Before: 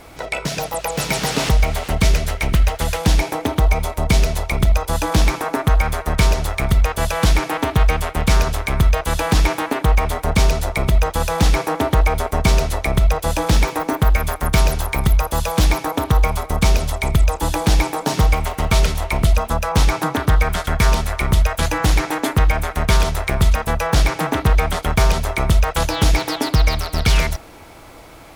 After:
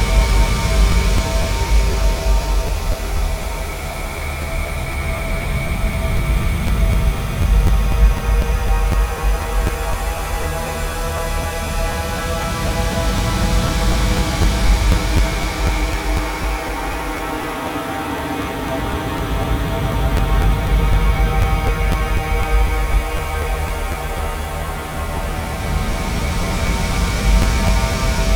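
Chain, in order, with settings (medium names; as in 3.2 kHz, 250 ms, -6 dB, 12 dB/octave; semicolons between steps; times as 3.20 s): Paulstretch 13×, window 0.50 s, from 6.19 s; crackling interface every 0.25 s, samples 512, repeat, from 0.91 s; trim -1.5 dB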